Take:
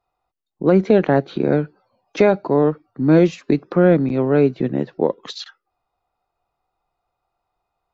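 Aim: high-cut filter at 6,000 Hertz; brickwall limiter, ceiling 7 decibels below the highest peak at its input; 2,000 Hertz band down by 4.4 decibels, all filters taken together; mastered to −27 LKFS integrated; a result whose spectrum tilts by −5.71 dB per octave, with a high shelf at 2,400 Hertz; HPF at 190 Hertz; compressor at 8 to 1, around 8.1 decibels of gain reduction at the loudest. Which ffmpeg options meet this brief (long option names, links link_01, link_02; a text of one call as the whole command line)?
ffmpeg -i in.wav -af "highpass=190,lowpass=6000,equalizer=frequency=2000:width_type=o:gain=-9,highshelf=frequency=2400:gain=6,acompressor=threshold=-18dB:ratio=8,alimiter=limit=-15.5dB:level=0:latency=1" out.wav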